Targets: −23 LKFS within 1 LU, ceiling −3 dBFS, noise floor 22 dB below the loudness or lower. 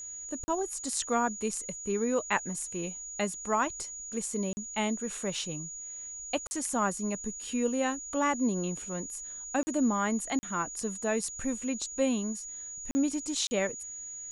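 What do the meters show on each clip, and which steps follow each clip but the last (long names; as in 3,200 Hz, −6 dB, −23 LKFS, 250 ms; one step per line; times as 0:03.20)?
number of dropouts 7; longest dropout 40 ms; interfering tone 6,800 Hz; level of the tone −39 dBFS; integrated loudness −32.0 LKFS; sample peak −13.0 dBFS; target loudness −23.0 LKFS
→ repair the gap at 0:00.44/0:04.53/0:06.47/0:09.63/0:10.39/0:12.91/0:13.47, 40 ms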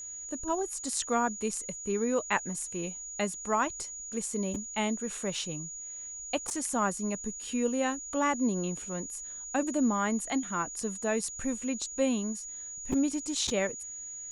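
number of dropouts 0; interfering tone 6,800 Hz; level of the tone −39 dBFS
→ notch filter 6,800 Hz, Q 30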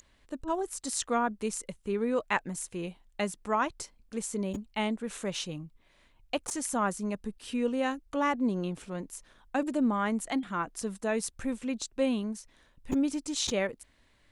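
interfering tone none found; integrated loudness −32.0 LKFS; sample peak −13.0 dBFS; target loudness −23.0 LKFS
→ level +9 dB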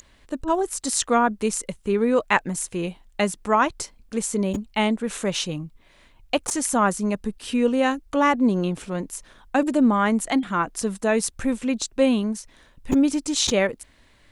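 integrated loudness −23.0 LKFS; sample peak −4.0 dBFS; background noise floor −56 dBFS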